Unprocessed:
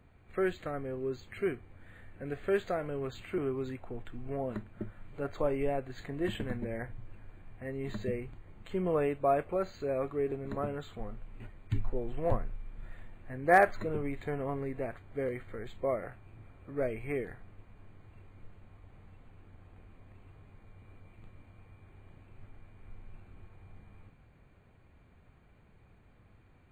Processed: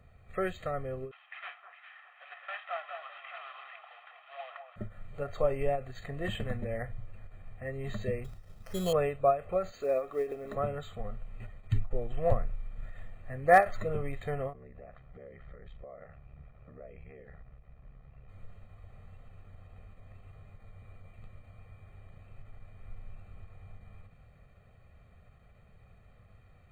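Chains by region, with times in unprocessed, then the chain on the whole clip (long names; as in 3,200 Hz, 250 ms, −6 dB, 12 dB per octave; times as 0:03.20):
0:01.11–0:04.76: variable-slope delta modulation 16 kbit/s + Butterworth high-pass 740 Hz 48 dB per octave + delay that swaps between a low-pass and a high-pass 203 ms, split 1,400 Hz, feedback 64%, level −6 dB
0:08.24–0:08.93: downward expander −49 dBFS + sample-rate reduction 3,700 Hz
0:09.72–0:10.55: low shelf with overshoot 200 Hz −12 dB, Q 1.5 + log-companded quantiser 8 bits
0:14.53–0:18.29: downward compressor 8 to 1, threshold −44 dBFS + ring modulation 35 Hz + high-frequency loss of the air 230 metres
whole clip: comb filter 1.6 ms, depth 70%; every ending faded ahead of time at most 200 dB per second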